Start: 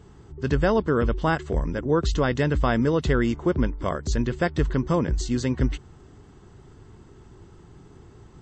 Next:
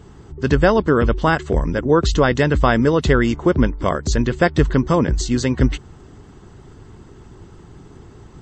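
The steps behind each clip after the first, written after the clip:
harmonic and percussive parts rebalanced percussive +4 dB
level +4.5 dB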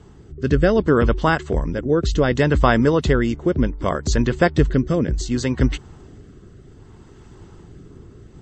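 rotating-speaker cabinet horn 0.65 Hz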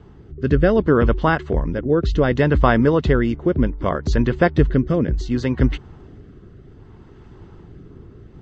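high-frequency loss of the air 190 metres
level +1 dB

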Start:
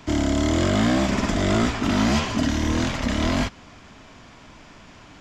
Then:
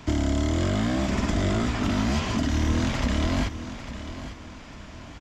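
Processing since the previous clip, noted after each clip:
downward compressor, threshold −23 dBFS, peak gain reduction 7 dB
parametric band 63 Hz +6.5 dB 2.1 octaves
repeating echo 849 ms, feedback 34%, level −12 dB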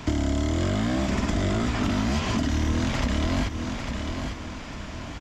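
downward compressor 2.5 to 1, threshold −30 dBFS, peak gain reduction 7.5 dB
level +6 dB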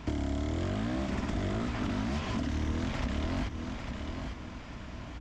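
mains hum 60 Hz, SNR 15 dB
high-shelf EQ 5,900 Hz −8 dB
highs frequency-modulated by the lows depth 0.22 ms
level −7.5 dB

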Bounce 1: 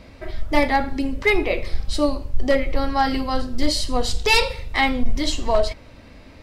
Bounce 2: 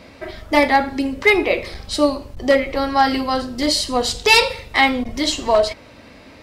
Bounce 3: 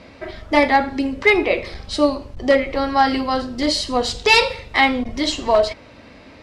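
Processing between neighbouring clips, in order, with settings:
high-pass filter 210 Hz 6 dB per octave; level +5 dB
high-frequency loss of the air 56 metres

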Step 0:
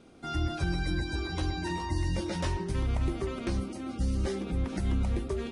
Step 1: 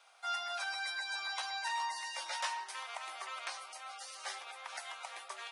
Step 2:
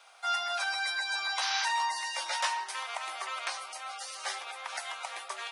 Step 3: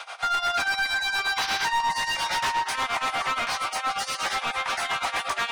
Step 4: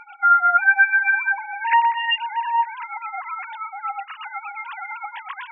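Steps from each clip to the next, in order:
Butterworth high-pass 740 Hz 36 dB per octave; level +1.5 dB
sound drawn into the spectrogram noise, 0:01.41–0:01.66, 860–6,300 Hz −40 dBFS; level +6.5 dB
downward compressor 2 to 1, threshold −35 dBFS, peak gain reduction 5.5 dB; amplitude tremolo 8.5 Hz, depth 88%; mid-hump overdrive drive 24 dB, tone 2,900 Hz, clips at −23.5 dBFS; level +7 dB
three sine waves on the formant tracks; level +5 dB

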